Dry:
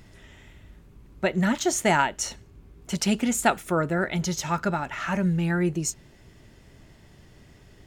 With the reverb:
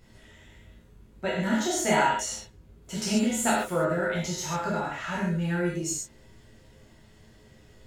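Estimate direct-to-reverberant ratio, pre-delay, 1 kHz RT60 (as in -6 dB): -6.5 dB, 9 ms, n/a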